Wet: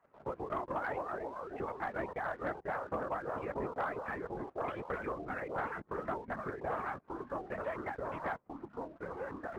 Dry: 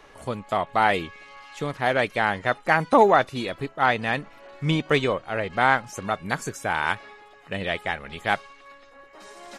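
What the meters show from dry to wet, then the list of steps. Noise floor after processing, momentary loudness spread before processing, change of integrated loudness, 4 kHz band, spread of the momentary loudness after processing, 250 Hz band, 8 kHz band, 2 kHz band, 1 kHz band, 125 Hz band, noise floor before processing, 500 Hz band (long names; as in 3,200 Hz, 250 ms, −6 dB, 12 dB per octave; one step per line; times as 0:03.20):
−64 dBFS, 12 LU, −15.5 dB, −29.5 dB, 5 LU, −13.5 dB, below −25 dB, −17.0 dB, −14.5 dB, −17.0 dB, −51 dBFS, −12.5 dB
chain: harmonic-percussive split with one part muted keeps percussive
downward compressor 10 to 1, threshold −35 dBFS, peak gain reduction 22 dB
noise gate −45 dBFS, range −8 dB
low-pass filter 1,700 Hz 24 dB per octave
linear-prediction vocoder at 8 kHz whisper
delay with pitch and tempo change per echo 85 ms, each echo −3 semitones, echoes 3
high-pass filter 140 Hz 6 dB per octave
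leveller curve on the samples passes 1
level −2 dB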